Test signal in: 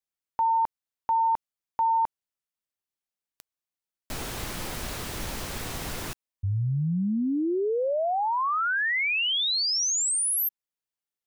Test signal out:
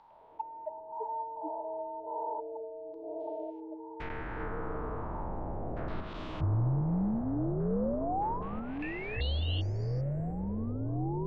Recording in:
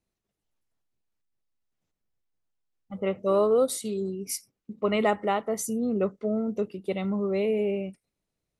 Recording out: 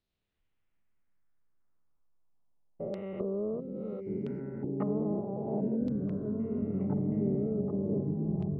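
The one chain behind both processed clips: stepped spectrum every 0.4 s; treble ducked by the level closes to 350 Hz, closed at -28 dBFS; low shelf 78 Hz +6 dB; delay with a stepping band-pass 0.719 s, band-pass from 200 Hz, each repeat 0.7 oct, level -2.5 dB; LFO low-pass saw down 0.34 Hz 610–4200 Hz; echoes that change speed 0.106 s, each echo -6 st, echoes 3; gain -3 dB

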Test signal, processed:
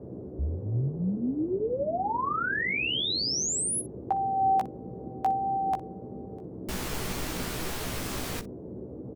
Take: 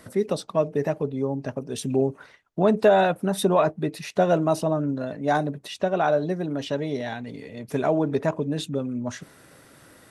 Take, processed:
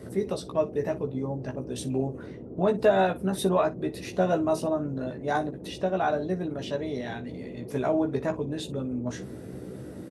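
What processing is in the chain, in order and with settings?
vibrato 1.5 Hz 10 cents; band noise 72–460 Hz -36 dBFS; early reflections 16 ms -4.5 dB, 60 ms -17 dB; gain -5.5 dB

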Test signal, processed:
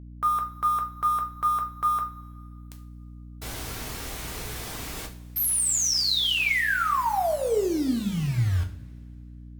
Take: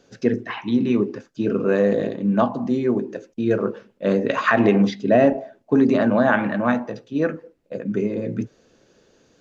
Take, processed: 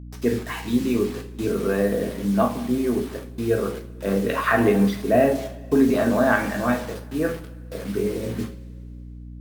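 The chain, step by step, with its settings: requantised 6-bit, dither none; two-slope reverb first 0.35 s, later 2.3 s, from -22 dB, DRR 2 dB; hum 60 Hz, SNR 15 dB; gain -3.5 dB; Opus 48 kbps 48000 Hz

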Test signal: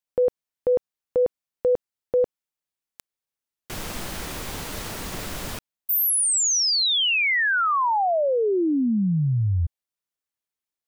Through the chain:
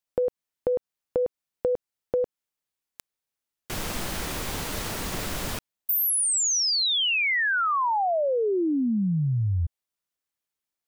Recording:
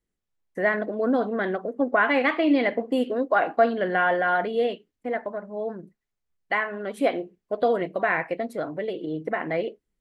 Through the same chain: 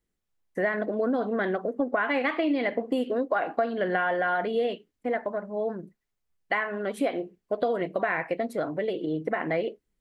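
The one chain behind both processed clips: compressor 6:1, threshold -24 dBFS; gain +1.5 dB

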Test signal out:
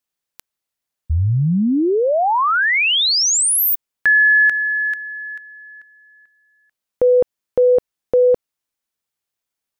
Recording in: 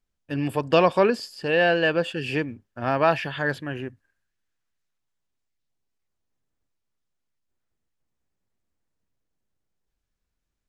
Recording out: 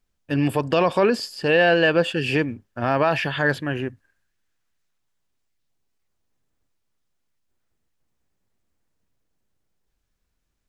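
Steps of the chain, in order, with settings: limiter -14.5 dBFS; gain +5.5 dB

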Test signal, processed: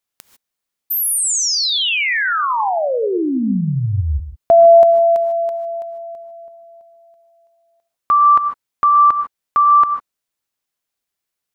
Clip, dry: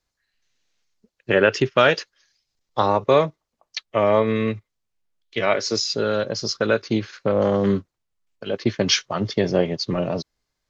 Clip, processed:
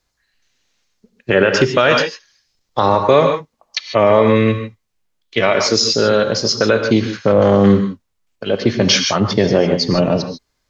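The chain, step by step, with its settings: non-linear reverb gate 0.17 s rising, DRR 7.5 dB; maximiser +9 dB; gain -1 dB

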